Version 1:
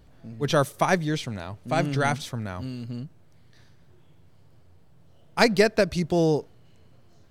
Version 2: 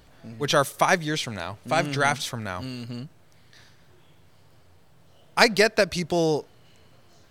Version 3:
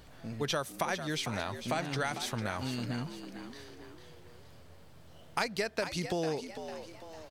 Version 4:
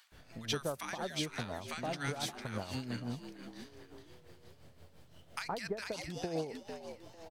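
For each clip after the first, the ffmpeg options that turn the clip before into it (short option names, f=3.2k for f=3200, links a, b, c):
-filter_complex "[0:a]asplit=2[a][b];[b]acompressor=threshold=-31dB:ratio=6,volume=-3dB[c];[a][c]amix=inputs=2:normalize=0,lowshelf=f=500:g=-10,volume=3.5dB"
-filter_complex "[0:a]acompressor=threshold=-31dB:ratio=5,asplit=2[a][b];[b]asplit=5[c][d][e][f][g];[c]adelay=450,afreqshift=79,volume=-10dB[h];[d]adelay=900,afreqshift=158,volume=-16.9dB[i];[e]adelay=1350,afreqshift=237,volume=-23.9dB[j];[f]adelay=1800,afreqshift=316,volume=-30.8dB[k];[g]adelay=2250,afreqshift=395,volume=-37.7dB[l];[h][i][j][k][l]amix=inputs=5:normalize=0[m];[a][m]amix=inputs=2:normalize=0"
-filter_complex "[0:a]acrossover=split=1100[a][b];[a]adelay=120[c];[c][b]amix=inputs=2:normalize=0,tremolo=f=5.8:d=0.62,volume=-1dB"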